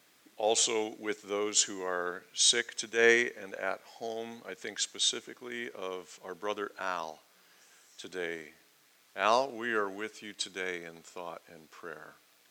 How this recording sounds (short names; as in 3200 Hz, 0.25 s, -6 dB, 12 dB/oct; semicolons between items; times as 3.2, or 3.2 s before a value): noise floor -65 dBFS; spectral tilt -0.5 dB/oct